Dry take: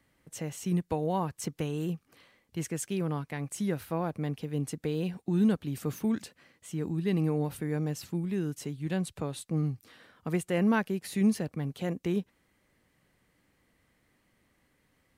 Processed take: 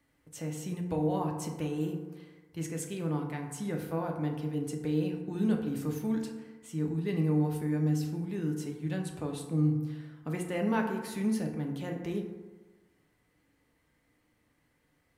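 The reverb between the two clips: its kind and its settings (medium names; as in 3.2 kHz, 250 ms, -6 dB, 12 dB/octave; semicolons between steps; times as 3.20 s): FDN reverb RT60 1.3 s, low-frequency decay 0.9×, high-frequency decay 0.4×, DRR 1.5 dB; trim -4.5 dB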